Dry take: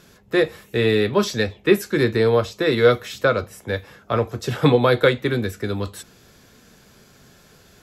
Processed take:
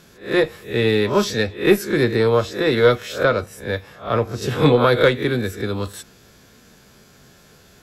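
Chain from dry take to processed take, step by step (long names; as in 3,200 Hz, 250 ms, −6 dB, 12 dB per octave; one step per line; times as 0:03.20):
peak hold with a rise ahead of every peak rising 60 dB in 0.33 s
harmonic generator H 4 −26 dB, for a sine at −1.5 dBFS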